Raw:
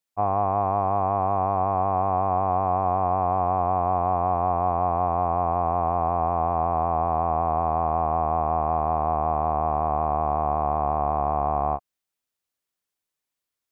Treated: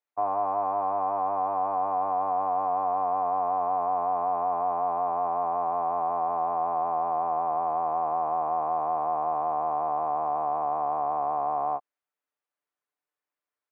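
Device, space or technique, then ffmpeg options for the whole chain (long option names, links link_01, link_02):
DJ mixer with the lows and highs turned down: -filter_complex "[0:a]acrossover=split=250 2100:gain=0.178 1 0.141[link_01][link_02][link_03];[link_01][link_02][link_03]amix=inputs=3:normalize=0,alimiter=limit=-18dB:level=0:latency=1,lowshelf=frequency=480:gain=-5.5,aecho=1:1:6.8:0.55,volume=1.5dB"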